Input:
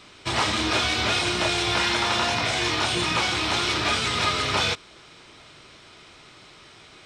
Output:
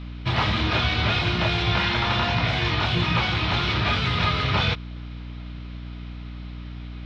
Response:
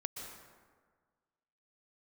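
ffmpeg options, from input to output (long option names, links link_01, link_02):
-af "lowpass=frequency=4100:width=0.5412,lowpass=frequency=4100:width=1.3066,lowshelf=frequency=220:width_type=q:width=1.5:gain=8,aeval=exprs='val(0)+0.02*(sin(2*PI*60*n/s)+sin(2*PI*2*60*n/s)/2+sin(2*PI*3*60*n/s)/3+sin(2*PI*4*60*n/s)/4+sin(2*PI*5*60*n/s)/5)':channel_layout=same"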